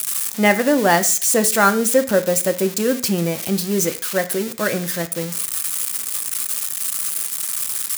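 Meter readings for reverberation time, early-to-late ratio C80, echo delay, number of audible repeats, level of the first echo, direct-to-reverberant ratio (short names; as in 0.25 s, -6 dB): 0.45 s, 19.0 dB, none, none, none, 8.0 dB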